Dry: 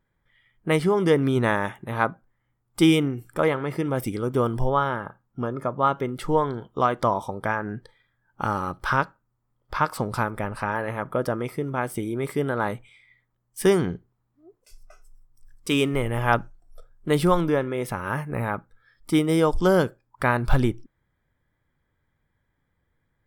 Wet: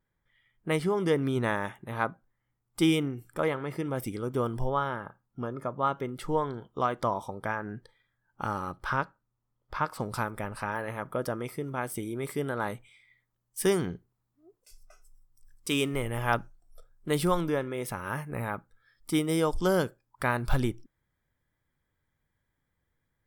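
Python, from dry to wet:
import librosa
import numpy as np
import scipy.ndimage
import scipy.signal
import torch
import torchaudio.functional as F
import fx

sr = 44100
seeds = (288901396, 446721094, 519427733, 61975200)

y = fx.high_shelf(x, sr, hz=4000.0, db=fx.steps((0.0, 2.5), (8.75, -3.0), (9.99, 7.5)))
y = F.gain(torch.from_numpy(y), -6.5).numpy()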